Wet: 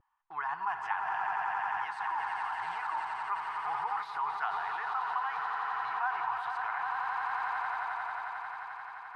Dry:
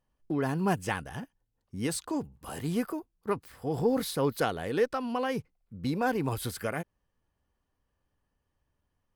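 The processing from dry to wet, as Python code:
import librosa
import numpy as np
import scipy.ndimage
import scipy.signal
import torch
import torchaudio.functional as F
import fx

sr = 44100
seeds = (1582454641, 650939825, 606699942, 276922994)

p1 = scipy.signal.sosfilt(scipy.signal.ellip(4, 1.0, 40, 870.0, 'highpass', fs=sr, output='sos'), x)
p2 = fx.echo_swell(p1, sr, ms=88, loudest=8, wet_db=-12.0)
p3 = fx.over_compress(p2, sr, threshold_db=-42.0, ratio=-0.5)
p4 = p2 + F.gain(torch.from_numpy(p3), 2.0).numpy()
p5 = fx.vibrato(p4, sr, rate_hz=0.59, depth_cents=30.0)
p6 = scipy.signal.sosfilt(scipy.signal.butter(2, 1100.0, 'lowpass', fs=sr, output='sos'), p5)
y = F.gain(torch.from_numpy(p6), 5.0).numpy()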